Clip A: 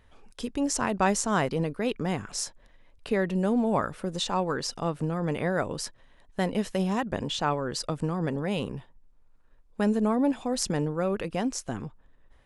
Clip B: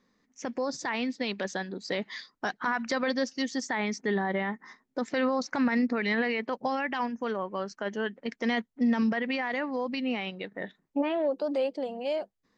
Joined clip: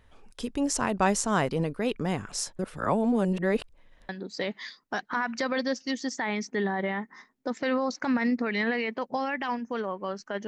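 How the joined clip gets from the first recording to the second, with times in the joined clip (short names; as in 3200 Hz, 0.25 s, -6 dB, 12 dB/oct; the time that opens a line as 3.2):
clip A
2.59–4.09 reverse
4.09 switch to clip B from 1.6 s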